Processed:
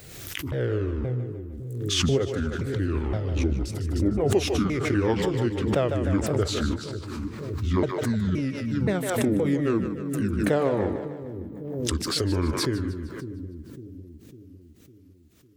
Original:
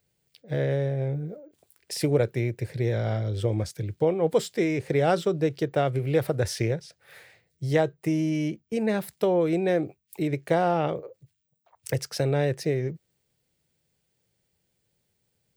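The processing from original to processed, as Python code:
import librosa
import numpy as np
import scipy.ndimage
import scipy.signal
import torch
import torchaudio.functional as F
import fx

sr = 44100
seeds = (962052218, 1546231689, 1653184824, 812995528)

y = fx.pitch_ramps(x, sr, semitones=-10.5, every_ms=522)
y = fx.echo_split(y, sr, split_hz=390.0, low_ms=553, high_ms=152, feedback_pct=52, wet_db=-8.5)
y = fx.pre_swell(y, sr, db_per_s=37.0)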